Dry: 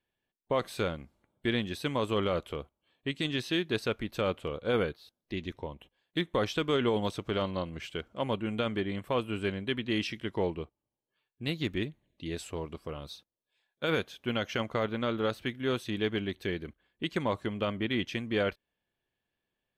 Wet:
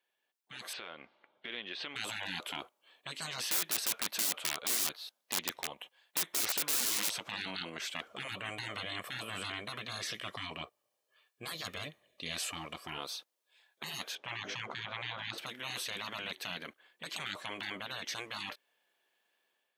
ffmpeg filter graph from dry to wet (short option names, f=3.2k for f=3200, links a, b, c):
-filter_complex "[0:a]asettb=1/sr,asplit=3[a][b][c];[a]atrim=end=0.734[d];[b]atrim=start=0.73:end=1.96,asetpts=PTS-STARTPTS,afade=t=in:d=0.004:c=qsin,afade=t=out:st=1.226:d=0.004:c=qsin,lowpass=f=3.5k:w=0.5412,lowpass=f=3.5k:w=1.3066,acompressor=threshold=-43dB:ratio=10:attack=3.2:release=140:knee=1:detection=peak,highshelf=f=2.5k:g=8[e];[c]atrim=start=1.956[f];[d][e]acrossfade=d=0.004:c1=hsin:c2=qsin[g];[g][f]acrossfade=d=0.004:c1=qsin:c2=hsin,asettb=1/sr,asplit=3[h][i][j];[h]atrim=end=3.444[k];[i]atrim=start=3.44:end=7.15,asetpts=PTS-STARTPTS,afade=t=in:d=0.004:c=qsin,afade=t=out:st=3.706:d=0.004:c=qsin,equalizer=f=350:w=1.4:g=-7,aeval=exprs='(mod(33.5*val(0)+1,2)-1)/33.5':c=same[l];[j]atrim=start=7.146[m];[k][l]acrossfade=d=0.004:c1=hsin:c2=qsin[n];[n][m]acrossfade=d=0.004:c1=qsin:c2=hsin,asettb=1/sr,asplit=3[o][p][q];[o]atrim=end=8.074[r];[p]atrim=start=8.07:end=12.98,asetpts=PTS-STARTPTS,afade=t=in:d=0.004:c=qsin,afade=t=out:st=4.906:d=0.004:c=qsin,lowshelf=f=120:g=11,aecho=1:1:1.7:0.46,atrim=end_sample=216531[s];[q]atrim=start=12.976[t];[r][s]acrossfade=d=0.004:c1=hsin:c2=qsin[u];[u][t]acrossfade=d=0.004:c1=qsin:c2=hsin,asettb=1/sr,asplit=3[v][w][x];[v]atrim=end=14.154[y];[w]atrim=start=14.15:end=15.38,asetpts=PTS-STARTPTS,afade=t=in:d=0.004:c=qsin,afade=t=out:st=1.226:d=0.004:c=qsin,lowpass=6.4k,tiltshelf=f=1.1k:g=7,bandreject=f=50:t=h:w=6,bandreject=f=100:t=h:w=6,bandreject=f=150:t=h:w=6,bandreject=f=200:t=h:w=6,bandreject=f=250:t=h:w=6,bandreject=f=300:t=h:w=6,bandreject=f=350:t=h:w=6,bandreject=f=400:t=h:w=6,bandreject=f=450:t=h:w=6,bandreject=f=500:t=h:w=6[z];[x]atrim=start=15.376[aa];[y][z]acrossfade=d=0.004:c1=hsin:c2=qsin[ab];[ab][aa]acrossfade=d=0.004:c1=qsin:c2=hsin,highpass=570,afftfilt=real='re*lt(hypot(re,im),0.0158)':imag='im*lt(hypot(re,im),0.0158)':win_size=1024:overlap=0.75,dynaudnorm=f=650:g=3:m=6.5dB,volume=3.5dB"